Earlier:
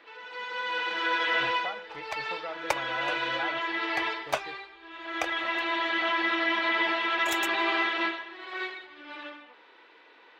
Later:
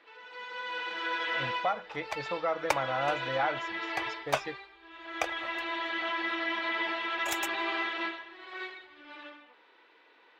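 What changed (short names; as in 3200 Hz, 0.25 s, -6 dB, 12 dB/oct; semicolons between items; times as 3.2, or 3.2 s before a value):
speech +8.0 dB; first sound -5.5 dB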